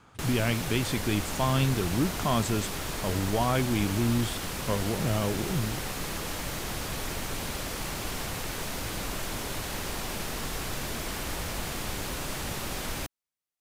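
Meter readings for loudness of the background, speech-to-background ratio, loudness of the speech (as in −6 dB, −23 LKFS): −33.5 LKFS, 4.0 dB, −29.5 LKFS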